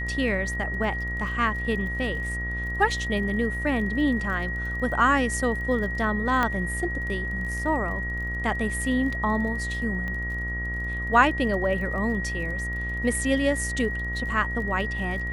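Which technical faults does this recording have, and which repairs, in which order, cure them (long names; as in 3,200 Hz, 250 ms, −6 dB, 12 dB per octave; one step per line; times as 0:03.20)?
mains buzz 60 Hz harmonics 32 −32 dBFS
surface crackle 34 per second −36 dBFS
whistle 1,900 Hz −30 dBFS
0:06.43: click −11 dBFS
0:10.08: click −22 dBFS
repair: click removal
hum removal 60 Hz, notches 32
notch filter 1,900 Hz, Q 30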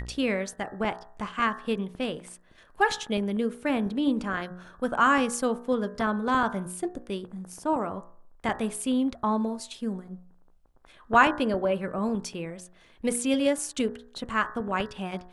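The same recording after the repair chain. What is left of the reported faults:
0:10.08: click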